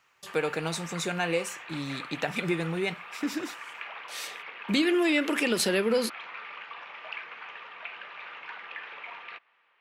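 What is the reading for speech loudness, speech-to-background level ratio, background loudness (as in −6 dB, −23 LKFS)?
−29.0 LKFS, 12.0 dB, −41.0 LKFS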